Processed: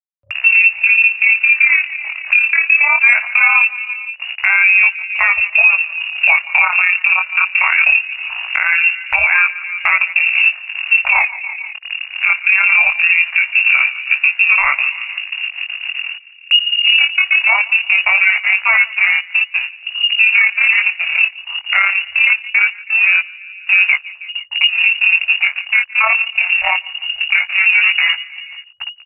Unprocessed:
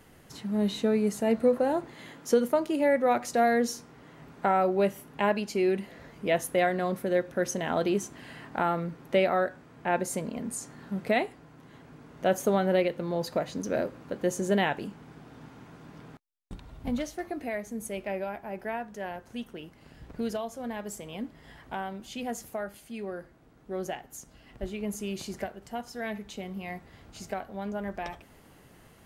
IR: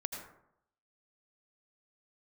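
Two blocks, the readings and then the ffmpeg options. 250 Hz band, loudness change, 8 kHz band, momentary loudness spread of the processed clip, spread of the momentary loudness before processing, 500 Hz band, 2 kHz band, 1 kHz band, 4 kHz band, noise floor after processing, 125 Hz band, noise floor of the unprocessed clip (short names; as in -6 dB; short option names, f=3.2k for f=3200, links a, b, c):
under -40 dB, +18.5 dB, under -25 dB, 12 LU, 18 LU, -12.0 dB, +28.5 dB, +7.5 dB, +26.0 dB, -37 dBFS, under -15 dB, -56 dBFS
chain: -filter_complex "[0:a]asubboost=boost=2.5:cutoff=100,afwtdn=0.0112,aeval=exprs='sgn(val(0))*max(abs(val(0))-0.00316,0)':c=same,asplit=2[a][b];[b]adelay=160,lowpass=f=1.4k:p=1,volume=-23.5dB,asplit=2[c][d];[d]adelay=160,lowpass=f=1.4k:p=1,volume=0.51,asplit=2[e][f];[f]adelay=160,lowpass=f=1.4k:p=1,volume=0.51[g];[c][e][g]amix=inputs=3:normalize=0[h];[a][h]amix=inputs=2:normalize=0,acompressor=threshold=-34dB:ratio=8,lowpass=f=2.5k:t=q:w=0.5098,lowpass=f=2.5k:t=q:w=0.6013,lowpass=f=2.5k:t=q:w=0.9,lowpass=f=2.5k:t=q:w=2.563,afreqshift=-2900,afftfilt=real='re*(1-between(b*sr/4096,100,550))':imag='im*(1-between(b*sr/4096,100,550))':win_size=4096:overlap=0.75,tremolo=f=35:d=0.571,flanger=delay=15:depth=7.7:speed=0.21,acompressor=mode=upward:threshold=-47dB:ratio=2.5,equalizer=f=560:w=4.6:g=-5.5,alimiter=level_in=34.5dB:limit=-1dB:release=50:level=0:latency=1,volume=-1dB"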